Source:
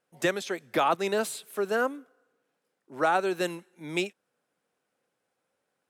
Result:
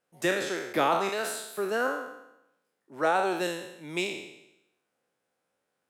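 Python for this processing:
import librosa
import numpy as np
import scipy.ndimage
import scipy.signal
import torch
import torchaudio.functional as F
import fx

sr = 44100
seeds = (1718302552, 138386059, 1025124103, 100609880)

y = fx.spec_trails(x, sr, decay_s=0.86)
y = fx.highpass(y, sr, hz=540.0, slope=6, at=(1.09, 1.58))
y = F.gain(torch.from_numpy(y), -3.0).numpy()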